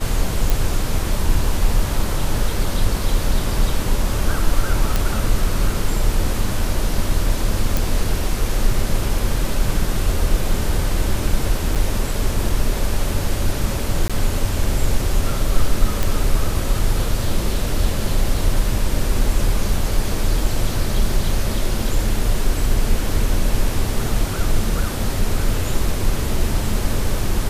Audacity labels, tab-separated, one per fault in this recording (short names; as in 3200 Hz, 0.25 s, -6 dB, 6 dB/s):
0.500000	0.500000	pop
4.960000	4.960000	pop
7.770000	7.770000	pop
11.750000	11.760000	gap 7 ms
14.080000	14.100000	gap 16 ms
16.030000	16.030000	pop